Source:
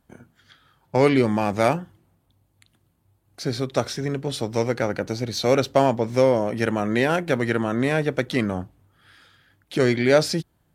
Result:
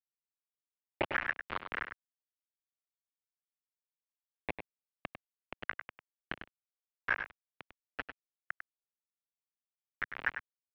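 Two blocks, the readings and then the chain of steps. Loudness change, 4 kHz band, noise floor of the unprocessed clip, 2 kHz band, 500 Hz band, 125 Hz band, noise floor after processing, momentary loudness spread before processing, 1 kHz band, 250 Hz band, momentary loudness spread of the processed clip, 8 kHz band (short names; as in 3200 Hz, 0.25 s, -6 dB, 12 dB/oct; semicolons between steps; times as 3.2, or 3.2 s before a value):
-17.5 dB, -20.0 dB, -67 dBFS, -8.5 dB, -28.5 dB, -31.0 dB, under -85 dBFS, 9 LU, -17.0 dB, -30.0 dB, 21 LU, under -40 dB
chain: minimum comb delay 0.37 ms; low shelf 170 Hz -2.5 dB; auto-wah 350–2000 Hz, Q 16, up, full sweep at -19 dBFS; soft clip -32 dBFS, distortion -18 dB; chorus 2.5 Hz, delay 16 ms, depth 5.3 ms; high-pass sweep 870 Hz -> 360 Hz, 2.09–5.74; dispersion highs, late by 0.135 s, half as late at 1200 Hz; bit-crush 6-bit; echo 99 ms -9 dB; mistuned SSB -340 Hz 290–3200 Hz; gain +12 dB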